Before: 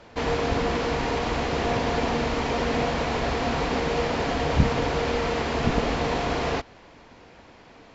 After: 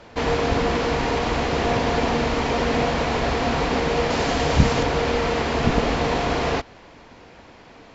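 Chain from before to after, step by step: 4.1–4.83 high shelf 6100 Hz +11 dB; gain +3.5 dB

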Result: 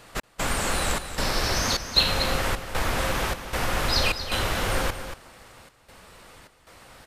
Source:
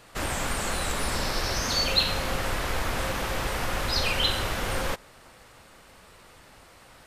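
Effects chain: step gate "xx..xxxx" 153 bpm -60 dB; echo 0.234 s -10 dB; gain +3 dB

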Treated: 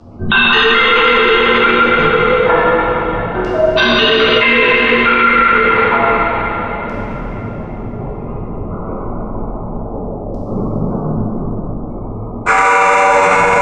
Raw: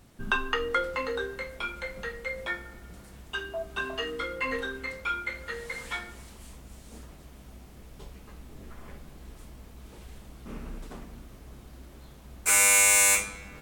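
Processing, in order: Wiener smoothing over 25 samples; LPF 8300 Hz 24 dB/oct; low shelf 72 Hz -11.5 dB; spectral gate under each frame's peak -30 dB strong; chorus voices 6, 1.1 Hz, delay 12 ms, depth 4 ms; frequency shift -26 Hz; LFO low-pass saw down 0.29 Hz 540–5300 Hz; high shelf 3800 Hz +11.5 dB; thinning echo 0.145 s, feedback 81%, high-pass 660 Hz, level -22 dB; plate-style reverb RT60 3.8 s, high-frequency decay 0.95×, DRR -8 dB; maximiser +24.5 dB; gain -1 dB

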